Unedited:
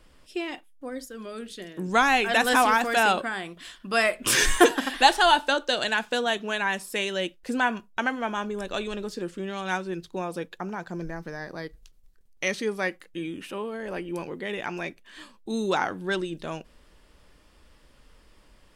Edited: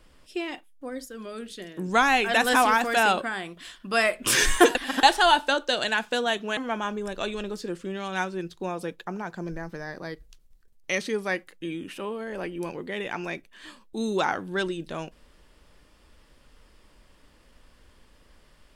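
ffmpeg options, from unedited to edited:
-filter_complex "[0:a]asplit=4[s0][s1][s2][s3];[s0]atrim=end=4.752[s4];[s1]atrim=start=4.748:end=5.032,asetpts=PTS-STARTPTS,areverse[s5];[s2]atrim=start=5.028:end=6.572[s6];[s3]atrim=start=8.098[s7];[s4][s5]acrossfade=d=0.004:c1=hsin:c2=hsin[s8];[s8][s6]acrossfade=d=0.004:c1=hsin:c2=hsin[s9];[s9][s7]acrossfade=d=0.004:c1=hsin:c2=hsin"

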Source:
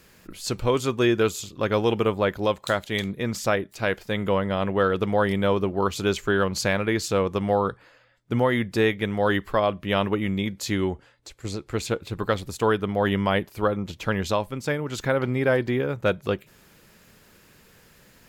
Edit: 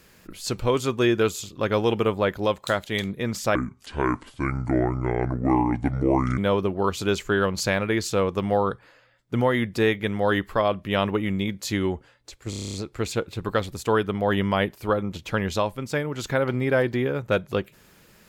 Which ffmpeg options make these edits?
-filter_complex "[0:a]asplit=11[s0][s1][s2][s3][s4][s5][s6][s7][s8][s9][s10];[s0]atrim=end=3.554[s11];[s1]atrim=start=3.55:end=5.36,asetpts=PTS-STARTPTS,asetrate=28224,aresample=44100,atrim=end_sample=124720,asetpts=PTS-STARTPTS[s12];[s2]atrim=start=5.356:end=11.512[s13];[s3]atrim=start=11.478:end=11.512[s14];[s4]atrim=start=11.478:end=11.512[s15];[s5]atrim=start=11.478:end=11.512[s16];[s6]atrim=start=11.478:end=11.512[s17];[s7]atrim=start=11.478:end=11.512[s18];[s8]atrim=start=11.478:end=11.512[s19];[s9]atrim=start=11.478:end=11.512[s20];[s10]atrim=start=11.478[s21];[s11][s12]acrossfade=d=0.004:c1=hsin:c2=hsin[s22];[s22][s13]acrossfade=d=0.004:c1=hsin:c2=hsin[s23];[s23][s14]acrossfade=d=0.004:c1=hsin:c2=hsin[s24];[s24][s15]acrossfade=d=0.004:c1=hsin:c2=hsin[s25];[s25][s16]acrossfade=d=0.004:c1=hsin:c2=hsin[s26];[s26][s17]acrossfade=d=0.004:c1=hsin:c2=hsin[s27];[s27][s18]acrossfade=d=0.004:c1=hsin:c2=hsin[s28];[s28][s19]acrossfade=d=0.004:c1=hsin:c2=hsin[s29];[s29][s20]acrossfade=d=0.004:c1=hsin:c2=hsin[s30];[s30][s21]acrossfade=d=0.004:c1=hsin:c2=hsin"

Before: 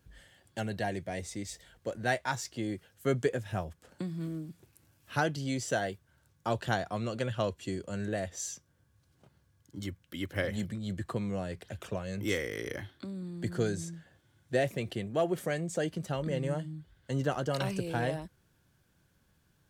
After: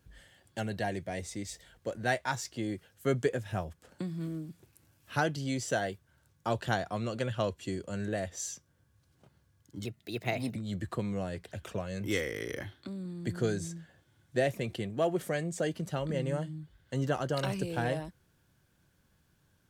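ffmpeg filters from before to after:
-filter_complex "[0:a]asplit=3[s0][s1][s2];[s0]atrim=end=9.854[s3];[s1]atrim=start=9.85:end=10.73,asetpts=PTS-STARTPTS,asetrate=54684,aresample=44100[s4];[s2]atrim=start=10.726[s5];[s3][s4]acrossfade=d=0.004:c1=hsin:c2=hsin[s6];[s6][s5]acrossfade=d=0.004:c1=hsin:c2=hsin"

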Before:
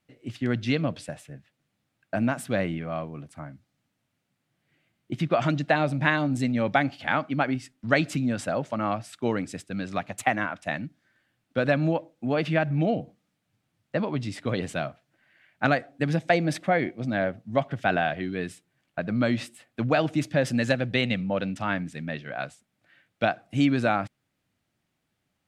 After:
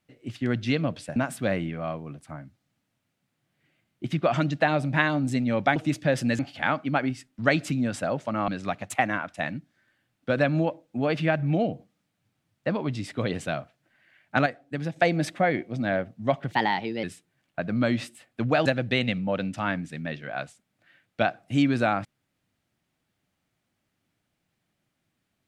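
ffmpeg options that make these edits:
-filter_complex "[0:a]asplit=10[s0][s1][s2][s3][s4][s5][s6][s7][s8][s9];[s0]atrim=end=1.162[s10];[s1]atrim=start=2.238:end=6.842[s11];[s2]atrim=start=20.048:end=20.682[s12];[s3]atrim=start=6.838:end=8.932[s13];[s4]atrim=start=9.758:end=15.742[s14];[s5]atrim=start=15.738:end=16.242,asetpts=PTS-STARTPTS,volume=0.531[s15];[s6]atrim=start=16.238:end=17.794[s16];[s7]atrim=start=17.79:end=18.43,asetpts=PTS-STARTPTS,asetrate=53802,aresample=44100,atrim=end_sample=23134,asetpts=PTS-STARTPTS[s17];[s8]atrim=start=18.426:end=20.052[s18];[s9]atrim=start=20.678[s19];[s10][s11]acrossfade=d=0.004:c1=hsin:c2=hsin[s20];[s20][s12]acrossfade=d=0.004:c1=hsin:c2=hsin[s21];[s21][s13]acrossfade=d=0.004:c1=hsin:c2=hsin[s22];[s22][s14]acrossfade=d=0.004:c1=hsin:c2=hsin[s23];[s23][s15]acrossfade=d=0.004:c1=hsin:c2=hsin[s24];[s24][s16]acrossfade=d=0.004:c1=hsin:c2=hsin[s25];[s25][s17]acrossfade=d=0.004:c1=hsin:c2=hsin[s26];[s26][s18]acrossfade=d=0.004:c1=hsin:c2=hsin[s27];[s27][s19]acrossfade=d=0.004:c1=hsin:c2=hsin"

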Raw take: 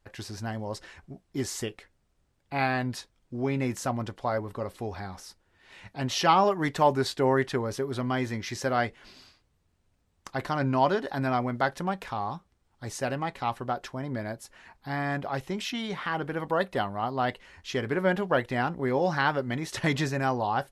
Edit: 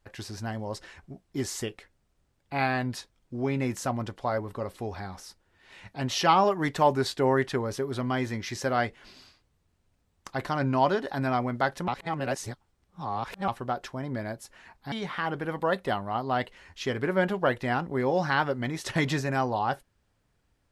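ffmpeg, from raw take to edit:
-filter_complex "[0:a]asplit=4[s0][s1][s2][s3];[s0]atrim=end=11.882[s4];[s1]atrim=start=11.878:end=13.482,asetpts=PTS-STARTPTS,areverse[s5];[s2]atrim=start=13.478:end=14.922[s6];[s3]atrim=start=15.798[s7];[s4][s5]acrossfade=d=0.004:c1=hsin:c2=hsin[s8];[s8][s6]acrossfade=d=0.004:c1=hsin:c2=hsin[s9];[s9][s7]acrossfade=d=0.004:c1=hsin:c2=hsin"

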